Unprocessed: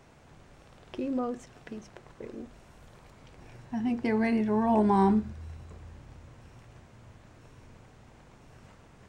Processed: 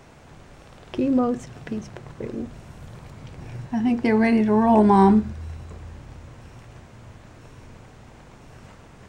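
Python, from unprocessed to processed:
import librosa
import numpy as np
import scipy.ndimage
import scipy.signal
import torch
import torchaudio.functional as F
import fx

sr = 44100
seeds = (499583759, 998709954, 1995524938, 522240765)

y = fx.peak_eq(x, sr, hz=120.0, db=8.5, octaves=1.7, at=(0.95, 3.67))
y = F.gain(torch.from_numpy(y), 8.0).numpy()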